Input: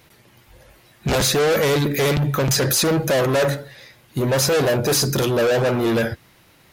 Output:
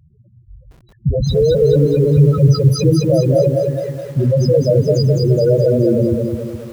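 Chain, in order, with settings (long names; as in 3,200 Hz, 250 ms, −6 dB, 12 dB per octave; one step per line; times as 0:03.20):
low-shelf EQ 140 Hz +8.5 dB
spectral peaks only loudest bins 4
feedback echo at a low word length 210 ms, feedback 55%, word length 8 bits, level −3 dB
level +4.5 dB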